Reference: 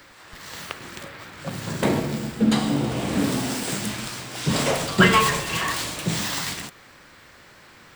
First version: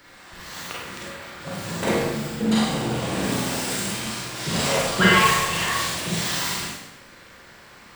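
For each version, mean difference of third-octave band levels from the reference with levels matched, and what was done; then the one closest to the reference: 3.0 dB: dynamic bell 210 Hz, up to -5 dB, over -33 dBFS, Q 0.77; Schroeder reverb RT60 0.8 s, combs from 32 ms, DRR -5 dB; trim -4 dB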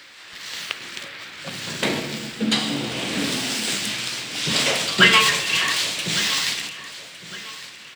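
5.0 dB: frequency weighting D; on a send: feedback delay 1159 ms, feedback 36%, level -16 dB; on the sum: trim -2.5 dB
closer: first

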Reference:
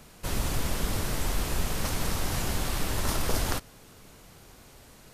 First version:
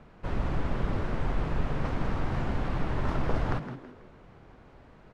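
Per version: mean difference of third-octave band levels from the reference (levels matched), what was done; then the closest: 9.5 dB: low-pass 1.7 kHz 12 dB/octave; on a send: frequency-shifting echo 163 ms, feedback 34%, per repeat +120 Hz, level -11.5 dB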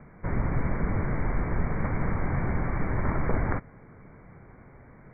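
14.5 dB: Chebyshev low-pass 2.3 kHz, order 10; peaking EQ 140 Hz +6 dB 1.4 oct; trim +1.5 dB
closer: first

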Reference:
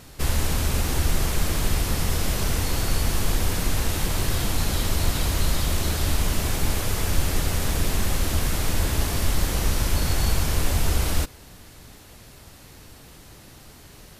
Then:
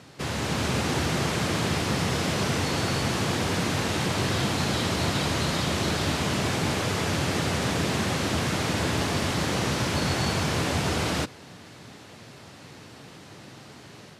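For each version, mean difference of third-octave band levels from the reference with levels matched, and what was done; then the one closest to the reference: 4.0 dB: high-pass 110 Hz 24 dB/octave; treble shelf 9.1 kHz -5 dB; level rider gain up to 4 dB; distance through air 60 m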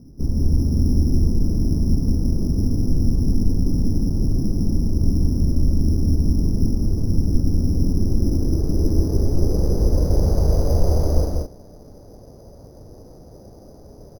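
16.5 dB: treble shelf 3.1 kHz -12 dB; low-pass sweep 260 Hz -> 560 Hz, 7.61–10.55 s; on a send: loudspeakers at several distances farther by 58 m -3 dB, 72 m -6 dB; on the sum: careless resampling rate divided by 8×, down none, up hold; trim +1.5 dB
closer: first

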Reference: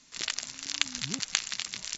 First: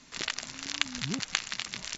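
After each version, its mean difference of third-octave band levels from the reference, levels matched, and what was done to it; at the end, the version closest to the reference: 4.0 dB: treble shelf 3.8 kHz -11.5 dB; in parallel at +0.5 dB: compression, threshold -46 dBFS, peak gain reduction 20 dB; on the sum: trim +2.5 dB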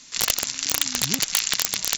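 7.0 dB: treble shelf 2.1 kHz +7 dB; integer overflow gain 11 dB; trim +7 dB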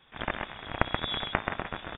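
14.0 dB: on a send: delay 130 ms -4.5 dB; on the sum: frequency inversion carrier 3.6 kHz; trim +3.5 dB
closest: first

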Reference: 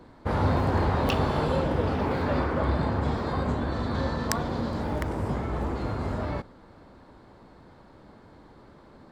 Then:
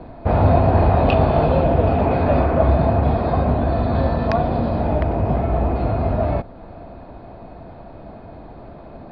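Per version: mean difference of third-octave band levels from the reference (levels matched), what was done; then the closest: 5.0 dB: steep low-pass 4.7 kHz 48 dB/octave; tilt EQ -2 dB/octave; in parallel at -1.5 dB: compression, threshold -35 dBFS, peak gain reduction 19.5 dB; on the sum: small resonant body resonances 680/2500 Hz, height 15 dB, ringing for 35 ms; trim +2 dB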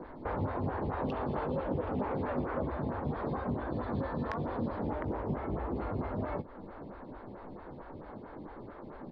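7.0 dB: compression 6:1, threshold -37 dBFS, peak gain reduction 17 dB; distance through air 350 m; doubling 20 ms -12 dB; lamp-driven phase shifter 4.5 Hz; trim +9 dB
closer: first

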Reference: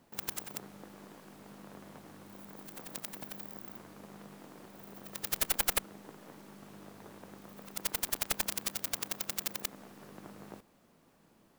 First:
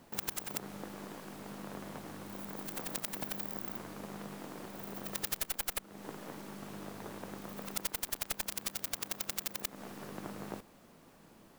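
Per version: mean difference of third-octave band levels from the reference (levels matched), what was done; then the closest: 6.0 dB: bass shelf 180 Hz -3 dB; compression 5:1, threshold -38 dBFS, peak gain reduction 15 dB; bass shelf 69 Hz +6 dB; trim +6.5 dB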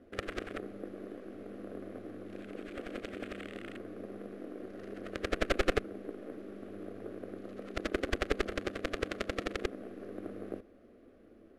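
9.0 dB: careless resampling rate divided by 4×, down none, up zero stuff; low-pass 1.1 kHz 12 dB/octave; static phaser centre 380 Hz, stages 4; trim +12 dB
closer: first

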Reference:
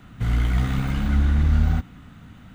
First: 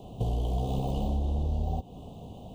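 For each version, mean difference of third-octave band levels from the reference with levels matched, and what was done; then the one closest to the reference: 8.0 dB: elliptic band-stop 1–2.9 kHz, stop band 50 dB; high-order bell 540 Hz +13.5 dB 1.3 oct; compression, threshold -26 dBFS, peak gain reduction 12 dB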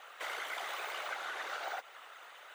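17.0 dB: steep high-pass 500 Hz 48 dB/octave; compression 4:1, threshold -40 dBFS, peak gain reduction 7.5 dB; whisper effect; trim +2.5 dB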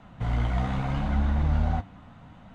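4.0 dB: high-order bell 740 Hz +9.5 dB 1.2 oct; flange 0.79 Hz, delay 4.3 ms, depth 6.4 ms, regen +64%; distance through air 71 m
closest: third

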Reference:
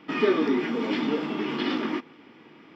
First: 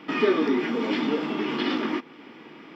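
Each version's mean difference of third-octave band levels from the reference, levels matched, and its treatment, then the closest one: 1.5 dB: peaking EQ 80 Hz -12 dB 1 oct; in parallel at 0 dB: compression, threshold -39 dBFS, peak gain reduction 19.5 dB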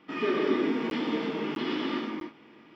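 3.0 dB: gated-style reverb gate 330 ms flat, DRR -2.5 dB; crackling interface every 0.65 s, samples 512, zero, from 0.90 s; trim -7.5 dB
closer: first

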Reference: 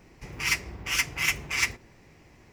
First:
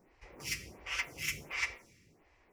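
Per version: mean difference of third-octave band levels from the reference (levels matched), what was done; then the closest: 5.0 dB: dynamic bell 540 Hz, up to +7 dB, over -58 dBFS, Q 3; plate-style reverb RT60 0.86 s, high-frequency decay 1×, DRR 11.5 dB; lamp-driven phase shifter 1.4 Hz; trim -8 dB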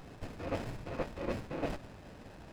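11.0 dB: reverse; compression 6:1, threshold -39 dBFS, peak gain reduction 17.5 dB; reverse; frequency inversion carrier 2.6 kHz; sliding maximum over 17 samples; trim +7 dB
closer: first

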